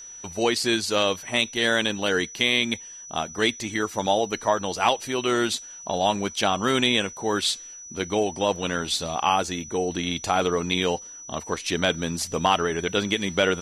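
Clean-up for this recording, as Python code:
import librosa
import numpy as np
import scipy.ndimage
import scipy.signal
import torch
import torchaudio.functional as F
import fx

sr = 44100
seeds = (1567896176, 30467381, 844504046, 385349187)

y = fx.notch(x, sr, hz=5900.0, q=30.0)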